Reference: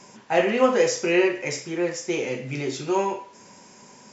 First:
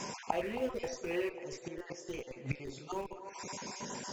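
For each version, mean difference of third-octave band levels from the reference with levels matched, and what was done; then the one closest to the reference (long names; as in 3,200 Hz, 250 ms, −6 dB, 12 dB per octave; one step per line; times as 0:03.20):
8.5 dB: time-frequency cells dropped at random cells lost 30%
in parallel at −7 dB: comparator with hysteresis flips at −20 dBFS
on the sum: gate with flip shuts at −25 dBFS, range −24 dB
feedback echo with a band-pass in the loop 269 ms, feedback 67%, band-pass 650 Hz, level −10.5 dB
level +7.5 dB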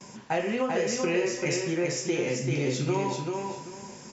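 6.5 dB: noise gate with hold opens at −40 dBFS
bass and treble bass +7 dB, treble +2 dB
downward compressor 6 to 1, threshold −25 dBFS, peak gain reduction 13 dB
repeating echo 389 ms, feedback 24%, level −4 dB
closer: second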